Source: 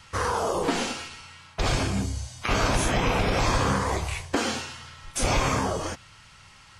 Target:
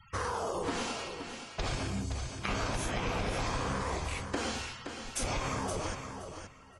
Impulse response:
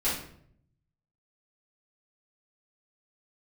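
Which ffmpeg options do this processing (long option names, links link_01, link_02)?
-af "afftfilt=real='re*gte(hypot(re,im),0.00562)':imag='im*gte(hypot(re,im),0.00562)':win_size=1024:overlap=0.75,acompressor=threshold=-28dB:ratio=3,aecho=1:1:521|1042|1563:0.398|0.0717|0.0129,volume=-4dB"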